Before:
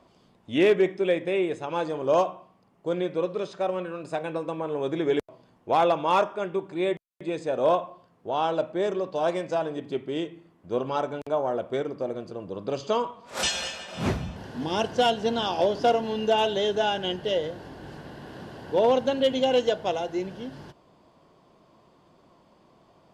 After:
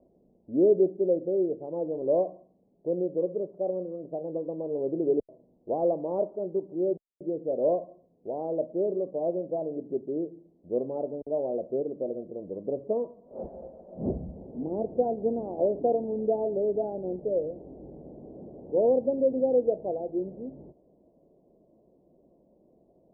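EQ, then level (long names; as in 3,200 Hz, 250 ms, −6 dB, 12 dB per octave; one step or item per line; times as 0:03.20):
Butterworth low-pass 620 Hz 36 dB per octave
parametric band 110 Hz −10.5 dB 1 octave
0.0 dB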